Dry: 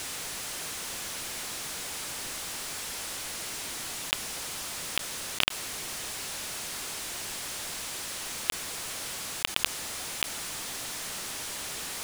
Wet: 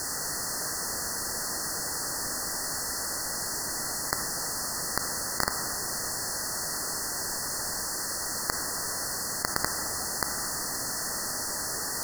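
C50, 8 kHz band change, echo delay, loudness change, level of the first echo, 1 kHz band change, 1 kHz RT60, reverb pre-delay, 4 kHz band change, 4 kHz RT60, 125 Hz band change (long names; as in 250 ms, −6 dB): 6.5 dB, +5.0 dB, no echo audible, +3.5 dB, no echo audible, +5.5 dB, 1.7 s, 32 ms, −1.0 dB, 1.2 s, +5.5 dB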